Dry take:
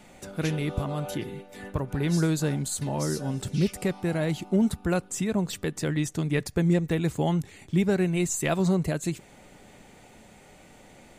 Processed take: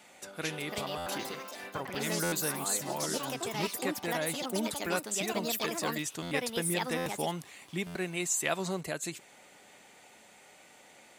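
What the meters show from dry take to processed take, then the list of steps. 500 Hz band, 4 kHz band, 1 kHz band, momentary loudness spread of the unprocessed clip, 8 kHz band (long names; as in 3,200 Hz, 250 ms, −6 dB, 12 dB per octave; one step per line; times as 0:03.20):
−5.5 dB, +2.5 dB, +0.5 dB, 8 LU, +1.5 dB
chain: high-pass filter 930 Hz 6 dB per octave
delay with pitch and tempo change per echo 434 ms, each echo +5 semitones, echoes 2
buffer that repeats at 0:00.97/0:02.23/0:06.22/0:06.97/0:07.86, samples 512, times 7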